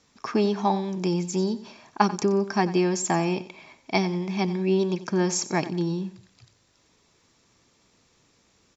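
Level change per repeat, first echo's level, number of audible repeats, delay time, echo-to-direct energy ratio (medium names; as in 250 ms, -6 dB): -10.0 dB, -15.5 dB, 2, 91 ms, -15.0 dB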